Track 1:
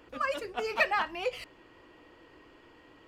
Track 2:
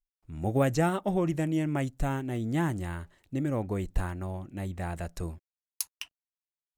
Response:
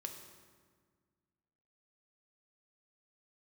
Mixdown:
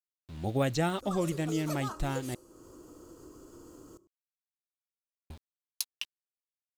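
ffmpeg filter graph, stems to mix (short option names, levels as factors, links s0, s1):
-filter_complex "[0:a]firequalizer=gain_entry='entry(340,0);entry(840,-13);entry(1300,-4);entry(1900,-29);entry(6500,13)':delay=0.05:min_phase=1,acompressor=mode=upward:threshold=0.00501:ratio=2.5,adelay=900,volume=1.06,asplit=2[s0][s1];[s1]volume=0.335[s2];[1:a]aeval=exprs='val(0)*gte(abs(val(0)),0.00501)':c=same,equalizer=f=3800:t=o:w=0.82:g=11,volume=0.668,asplit=3[s3][s4][s5];[s3]atrim=end=2.35,asetpts=PTS-STARTPTS,afade=t=out:st=2.346:d=0.004:c=hsin[s6];[s4]atrim=start=2.35:end=5.3,asetpts=PTS-STARTPTS,volume=0[s7];[s5]atrim=start=5.3,asetpts=PTS-STARTPTS,afade=t=in:d=0.004:c=hsin[s8];[s6][s7][s8]concat=n=3:v=0:a=1,asplit=2[s9][s10];[s10]apad=whole_len=179556[s11];[s0][s11]sidechaincompress=threshold=0.02:ratio=8:attack=45:release=1140[s12];[2:a]atrim=start_sample=2205[s13];[s2][s13]afir=irnorm=-1:irlink=0[s14];[s12][s9][s14]amix=inputs=3:normalize=0"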